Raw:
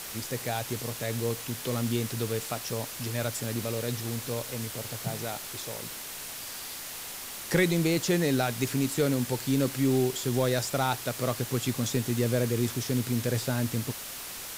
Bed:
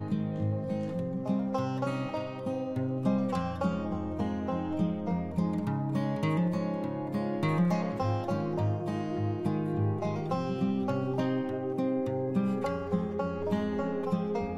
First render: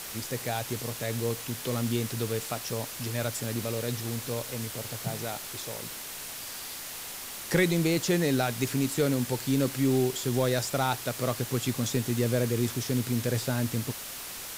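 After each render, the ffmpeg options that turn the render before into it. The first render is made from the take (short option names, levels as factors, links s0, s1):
-af anull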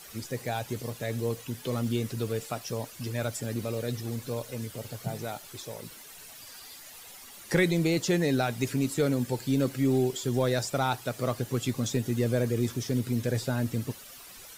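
-af "afftdn=nr=12:nf=-40"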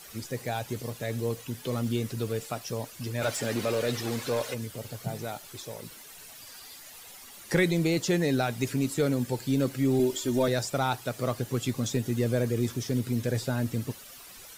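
-filter_complex "[0:a]asplit=3[s0][s1][s2];[s0]afade=t=out:st=3.21:d=0.02[s3];[s1]asplit=2[s4][s5];[s5]highpass=f=720:p=1,volume=8.91,asoftclip=type=tanh:threshold=0.133[s6];[s4][s6]amix=inputs=2:normalize=0,lowpass=f=3600:p=1,volume=0.501,afade=t=in:st=3.21:d=0.02,afade=t=out:st=4.53:d=0.02[s7];[s2]afade=t=in:st=4.53:d=0.02[s8];[s3][s7][s8]amix=inputs=3:normalize=0,asettb=1/sr,asplit=3[s9][s10][s11];[s9]atrim=end=9.994[s12];[s10]atrim=start=9.99:end=10.48,asetpts=PTS-STARTPTS,afade=t=in:d=0.004:c=qsin,afade=t=out:st=0.486:d=0.004:c=qsin,aecho=1:1:3.3:0.8,atrim=end_sample=21609[s13];[s11]atrim=start=10.476[s14];[s12][s13]acrossfade=d=0.004:c1=hsin:c2=qsin[s15];[s15][s14]acrossfade=d=0.004:c1=qsin:c2=hsin"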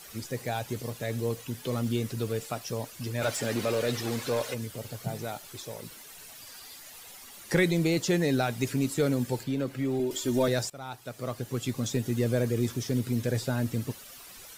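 -filter_complex "[0:a]asettb=1/sr,asplit=3[s0][s1][s2];[s0]atrim=end=9.434[s3];[s1]atrim=start=9.43:end=10.11,asetpts=PTS-STARTPTS,afade=t=in:d=0.004:c=qsin,afade=t=out:st=0.676:d=0.004:c=qsin,acrossover=split=360|3400[s4][s5][s6];[s4]acompressor=threshold=0.0282:ratio=4[s7];[s5]acompressor=threshold=0.0282:ratio=4[s8];[s6]acompressor=threshold=0.00158:ratio=4[s9];[s7][s8][s9]amix=inputs=3:normalize=0[s10];[s2]atrim=start=10.106[s11];[s3][s10]acrossfade=d=0.004:c1=hsin:c2=qsin[s12];[s12][s11]acrossfade=d=0.004:c1=qsin:c2=hsin,asplit=2[s13][s14];[s13]atrim=end=10.7,asetpts=PTS-STARTPTS,afade=t=out:st=10.696:d=0.004:c=hsin:silence=0.112202[s15];[s14]atrim=start=10.7,asetpts=PTS-STARTPTS,afade=t=in:d=1.68:c=qsin:silence=0.112202[s16];[s15][s16]concat=n=2:v=0:a=1"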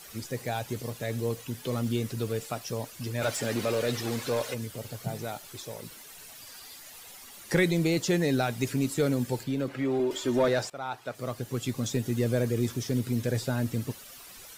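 -filter_complex "[0:a]asettb=1/sr,asplit=3[s0][s1][s2];[s0]atrim=end=9.684[s3];[s1]atrim=start=9.68:end=11.15,asetpts=PTS-STARTPTS,afade=t=in:d=0.004:c=qsin,afade=t=out:st=1.466:d=0.004:c=qsin,asplit=2[s4][s5];[s5]highpass=f=720:p=1,volume=5.01,asoftclip=type=tanh:threshold=0.188[s6];[s4][s6]amix=inputs=2:normalize=0,lowpass=f=1600:p=1,volume=0.501[s7];[s2]atrim=start=11.146[s8];[s3][s7]acrossfade=d=0.004:c1=hsin:c2=qsin[s9];[s9][s8]acrossfade=d=0.004:c1=qsin:c2=hsin"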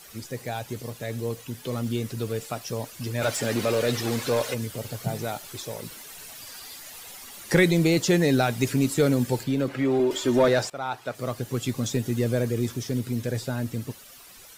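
-af "dynaudnorm=f=350:g=17:m=1.78"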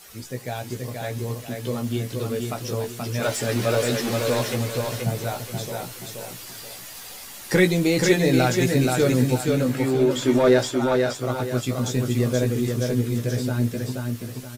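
-filter_complex "[0:a]asplit=2[s0][s1];[s1]adelay=16,volume=0.531[s2];[s0][s2]amix=inputs=2:normalize=0,aecho=1:1:478|956|1434|1912:0.668|0.227|0.0773|0.0263"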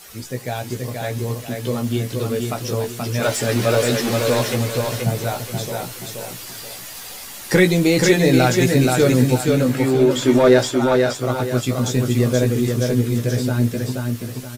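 -af "volume=1.68,alimiter=limit=0.708:level=0:latency=1"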